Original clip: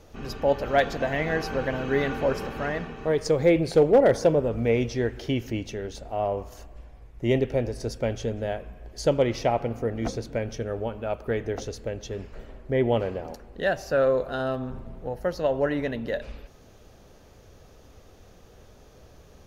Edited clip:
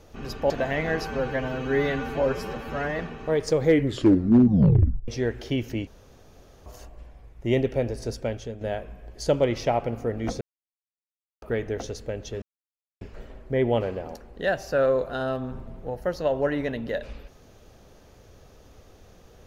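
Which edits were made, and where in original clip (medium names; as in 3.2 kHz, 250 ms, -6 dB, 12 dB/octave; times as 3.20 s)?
0.50–0.92 s: delete
1.49–2.77 s: stretch 1.5×
3.40 s: tape stop 1.46 s
5.65–6.44 s: room tone
7.91–8.39 s: fade out, to -9.5 dB
10.19–11.20 s: mute
12.20 s: insert silence 0.59 s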